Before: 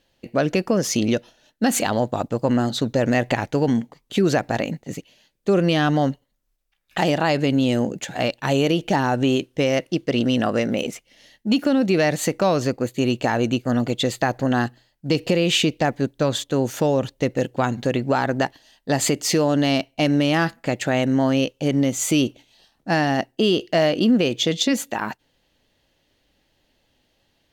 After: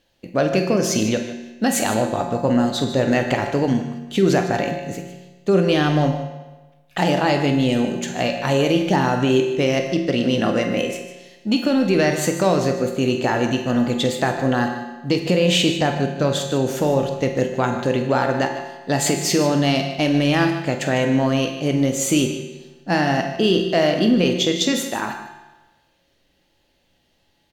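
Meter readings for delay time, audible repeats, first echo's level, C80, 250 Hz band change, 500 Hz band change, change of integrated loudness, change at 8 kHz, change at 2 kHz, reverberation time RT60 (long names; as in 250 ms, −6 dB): 46 ms, 2, −12.0 dB, 7.0 dB, +1.0 dB, +2.0 dB, +1.5 dB, +1.5 dB, +1.5 dB, 1.2 s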